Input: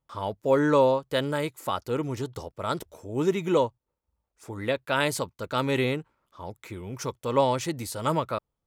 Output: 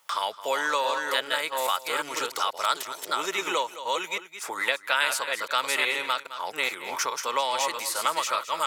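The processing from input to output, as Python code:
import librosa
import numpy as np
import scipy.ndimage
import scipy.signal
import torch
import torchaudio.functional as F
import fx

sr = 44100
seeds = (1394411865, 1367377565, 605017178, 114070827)

p1 = fx.reverse_delay(x, sr, ms=418, wet_db=-4.0)
p2 = fx.rider(p1, sr, range_db=5, speed_s=0.5)
p3 = p1 + (p2 * 10.0 ** (1.0 / 20.0))
p4 = scipy.signal.sosfilt(scipy.signal.butter(2, 1200.0, 'highpass', fs=sr, output='sos'), p3)
p5 = p4 + fx.echo_single(p4, sr, ms=213, db=-15.5, dry=0)
y = fx.band_squash(p5, sr, depth_pct=70)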